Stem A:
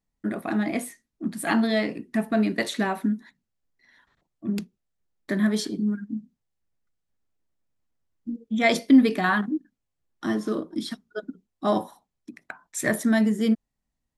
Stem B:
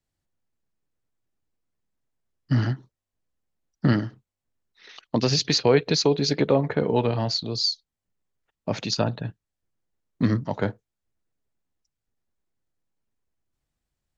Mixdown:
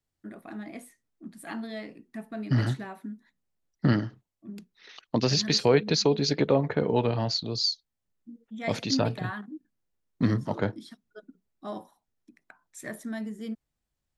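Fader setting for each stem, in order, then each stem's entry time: −14.0, −2.5 decibels; 0.00, 0.00 seconds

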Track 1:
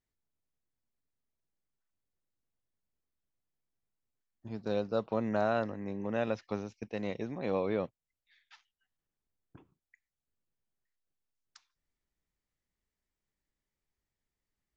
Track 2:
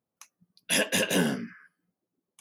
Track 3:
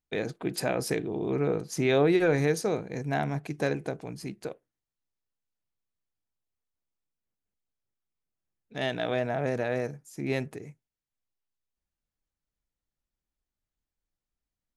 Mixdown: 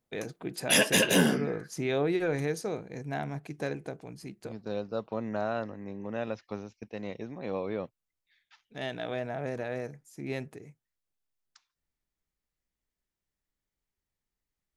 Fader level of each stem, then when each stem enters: −2.0, +2.0, −5.5 decibels; 0.00, 0.00, 0.00 seconds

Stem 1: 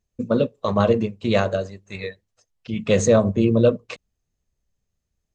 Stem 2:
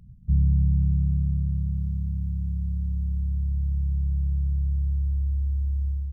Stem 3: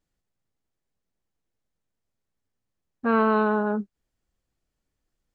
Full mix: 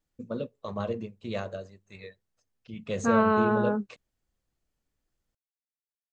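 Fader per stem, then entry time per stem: −14.0 dB, muted, −2.0 dB; 0.00 s, muted, 0.00 s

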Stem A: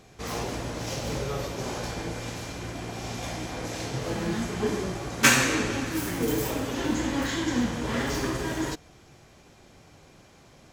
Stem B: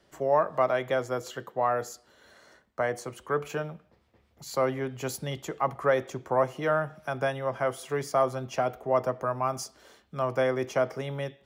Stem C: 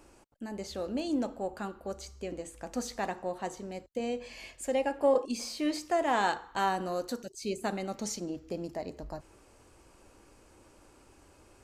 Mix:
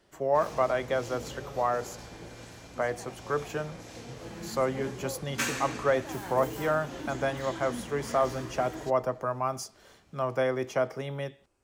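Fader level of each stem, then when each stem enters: −12.0, −1.5, −16.0 decibels; 0.15, 0.00, 0.00 seconds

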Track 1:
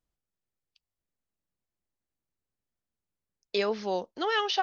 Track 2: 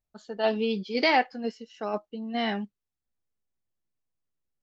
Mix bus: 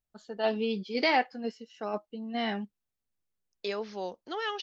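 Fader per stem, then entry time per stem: −6.0, −3.0 decibels; 0.10, 0.00 seconds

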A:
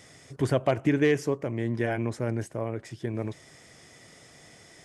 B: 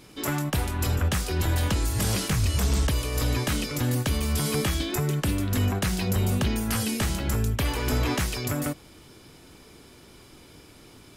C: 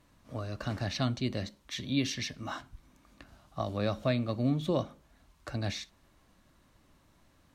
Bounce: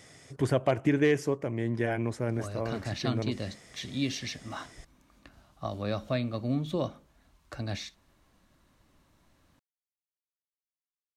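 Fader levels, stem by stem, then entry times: −1.5 dB, muted, −1.0 dB; 0.00 s, muted, 2.05 s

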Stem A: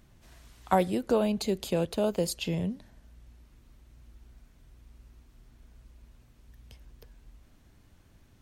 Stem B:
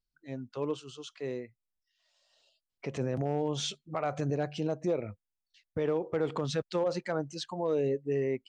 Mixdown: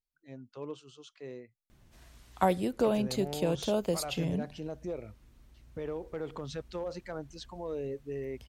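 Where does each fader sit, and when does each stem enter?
−2.0, −7.5 decibels; 1.70, 0.00 seconds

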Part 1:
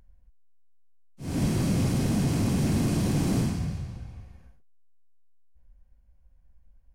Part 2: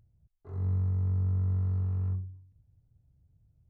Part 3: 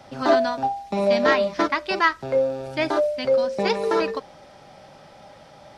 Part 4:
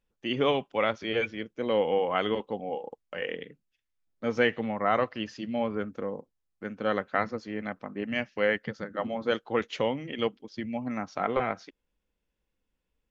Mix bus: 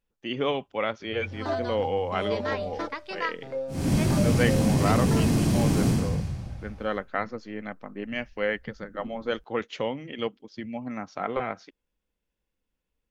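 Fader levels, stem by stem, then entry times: +2.5, −12.0, −11.5, −1.5 decibels; 2.50, 0.55, 1.20, 0.00 seconds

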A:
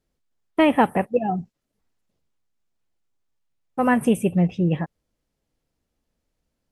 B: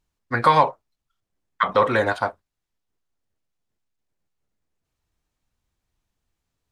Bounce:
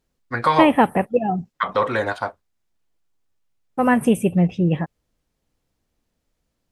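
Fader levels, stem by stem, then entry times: +2.0, −2.0 decibels; 0.00, 0.00 seconds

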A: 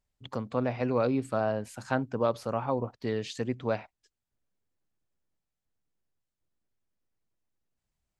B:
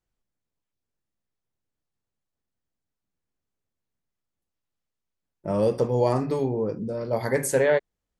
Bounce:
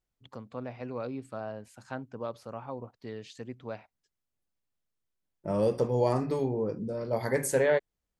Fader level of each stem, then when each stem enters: −9.5, −4.0 decibels; 0.00, 0.00 seconds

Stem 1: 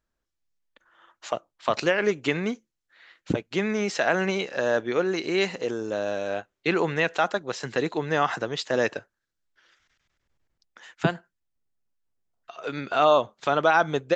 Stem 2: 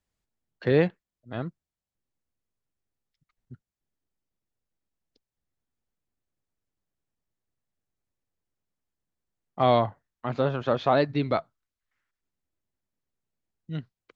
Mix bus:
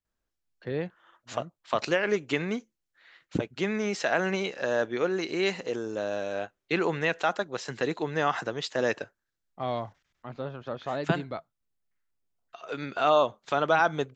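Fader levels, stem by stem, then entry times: −3.0, −10.5 decibels; 0.05, 0.00 seconds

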